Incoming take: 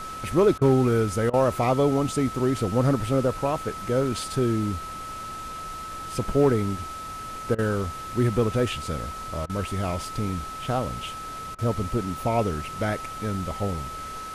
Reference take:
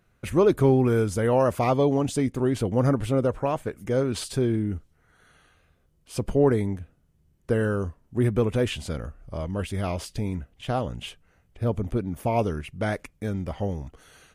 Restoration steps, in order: clip repair -10.5 dBFS; notch 1300 Hz, Q 30; interpolate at 0.58/1.3/7.55/9.46/11.55, 34 ms; noise print and reduce 27 dB

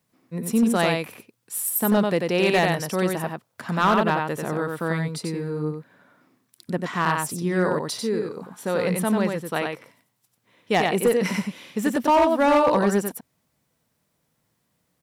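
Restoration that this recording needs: clip repair -12.5 dBFS; inverse comb 92 ms -4 dB

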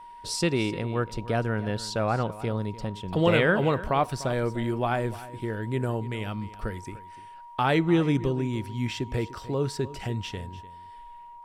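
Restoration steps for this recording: notch 950 Hz, Q 30; inverse comb 0.297 s -16.5 dB

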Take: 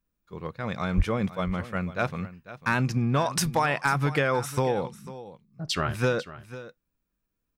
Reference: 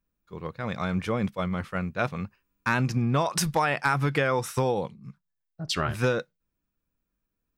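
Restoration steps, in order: clip repair -13.5 dBFS; de-plosive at 0.96; inverse comb 0.496 s -15.5 dB

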